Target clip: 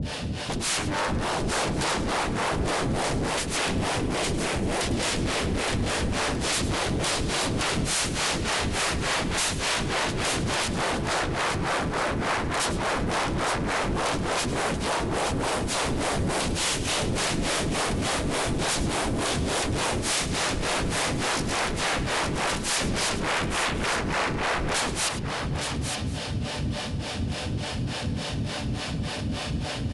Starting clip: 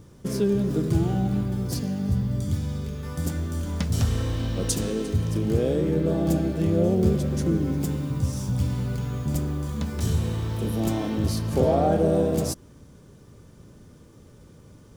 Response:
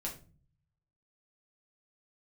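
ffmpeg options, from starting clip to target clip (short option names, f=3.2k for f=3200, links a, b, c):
-filter_complex "[0:a]highpass=170,lowshelf=f=360:g=-6.5,bandreject=f=370:w=12,asplit=2[a][b];[b]acompressor=threshold=-41dB:ratio=6,volume=-1dB[c];[a][c]amix=inputs=2:normalize=0,alimiter=limit=-21dB:level=0:latency=1:release=35,acontrast=41,aeval=exprs='0.178*sin(PI/2*7.94*val(0)/0.178)':c=same,acrossover=split=760[d][e];[d]aeval=exprs='val(0)*(1-1/2+1/2*cos(2*PI*6.9*n/s))':c=same[f];[e]aeval=exprs='val(0)*(1-1/2-1/2*cos(2*PI*6.9*n/s))':c=same[g];[f][g]amix=inputs=2:normalize=0,asoftclip=type=tanh:threshold=-24dB,asplit=2[h][i];[i]aecho=0:1:51|54|434|548:0.2|0.106|0.501|0.106[j];[h][j]amix=inputs=2:normalize=0,asetrate=22050,aresample=44100"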